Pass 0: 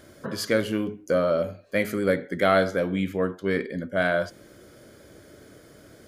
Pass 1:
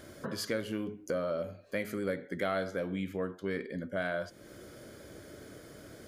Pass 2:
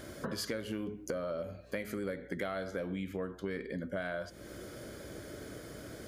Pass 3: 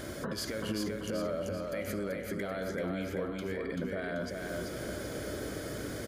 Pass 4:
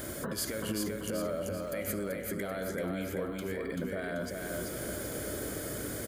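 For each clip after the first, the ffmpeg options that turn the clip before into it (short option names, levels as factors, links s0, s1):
-af "acompressor=threshold=0.0112:ratio=2"
-af "acompressor=threshold=0.0126:ratio=4,aeval=exprs='val(0)+0.000708*(sin(2*PI*60*n/s)+sin(2*PI*2*60*n/s)/2+sin(2*PI*3*60*n/s)/3+sin(2*PI*4*60*n/s)/4+sin(2*PI*5*60*n/s)/5)':c=same,volume=1.5"
-filter_complex "[0:a]alimiter=level_in=2.82:limit=0.0631:level=0:latency=1:release=95,volume=0.355,asplit=2[s0][s1];[s1]aecho=0:1:386|772|1158|1544|1930|2316:0.668|0.307|0.141|0.0651|0.0299|0.0138[s2];[s0][s2]amix=inputs=2:normalize=0,volume=2"
-af "aexciter=amount=4.1:drive=1.3:freq=7400"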